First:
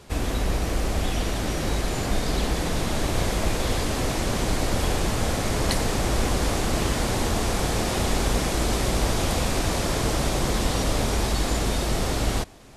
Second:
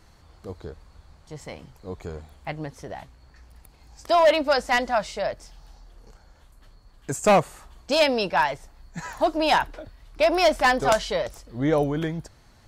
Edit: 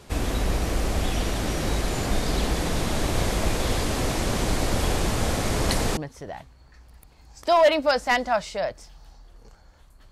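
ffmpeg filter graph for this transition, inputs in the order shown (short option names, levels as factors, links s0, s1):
-filter_complex "[0:a]apad=whole_dur=10.11,atrim=end=10.11,atrim=end=5.972[s0];[1:a]atrim=start=2.588:end=6.73[s1];[s0][s1]acrossfade=d=0.004:c1=hsin:c2=hsin"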